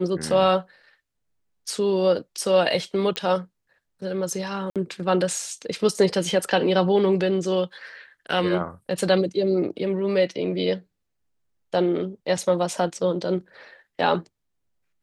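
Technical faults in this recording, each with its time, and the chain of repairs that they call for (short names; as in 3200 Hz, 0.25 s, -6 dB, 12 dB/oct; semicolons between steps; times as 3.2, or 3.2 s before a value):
3.16 pop -11 dBFS
4.7–4.76 gap 57 ms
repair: de-click; interpolate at 4.7, 57 ms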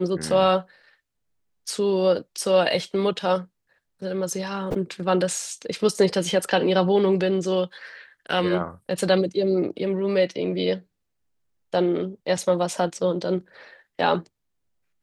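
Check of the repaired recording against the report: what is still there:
none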